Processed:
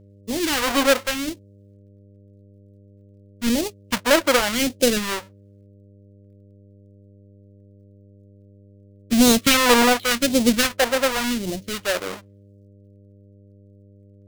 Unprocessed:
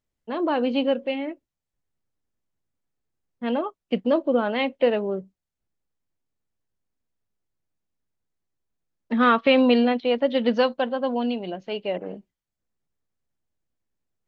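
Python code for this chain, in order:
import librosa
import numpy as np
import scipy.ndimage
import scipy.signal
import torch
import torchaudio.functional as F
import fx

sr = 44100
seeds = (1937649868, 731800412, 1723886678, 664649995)

y = fx.halfwave_hold(x, sr)
y = fx.phaser_stages(y, sr, stages=2, low_hz=120.0, high_hz=1300.0, hz=0.89, feedback_pct=30)
y = fx.dmg_buzz(y, sr, base_hz=100.0, harmonics=6, level_db=-52.0, tilt_db=-6, odd_only=False)
y = y * librosa.db_to_amplitude(2.5)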